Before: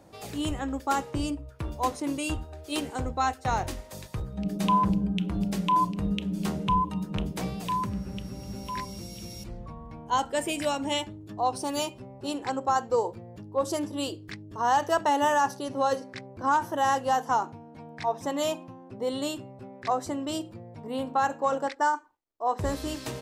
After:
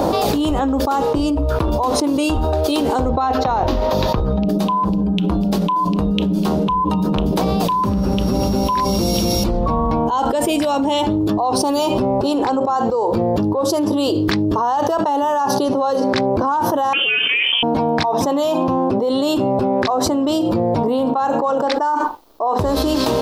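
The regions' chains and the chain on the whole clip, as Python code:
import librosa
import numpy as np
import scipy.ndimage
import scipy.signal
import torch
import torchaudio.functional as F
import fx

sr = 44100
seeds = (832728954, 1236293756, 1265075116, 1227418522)

y = fx.chain(x, sr, fx.moving_average(points=5),
    fx.over_compress(threshold_db=-31.0, ratio=-1.0), at=(3.09, 4.49))
y = fx.chain(y, sr, fx.freq_invert(carrier_hz=3300),
    fx.low_shelf(hz=130.0, db=-6.0), at=(16.93, 17.63))
y = fx.graphic_eq_10(y, sr, hz=(125, 250, 500, 1000, 2000, 4000, 8000), db=(-7, 3, 3, 6, -10, 4, -9))
y = fx.env_flatten(y, sr, amount_pct=100)
y = y * librosa.db_to_amplitude(-1.5)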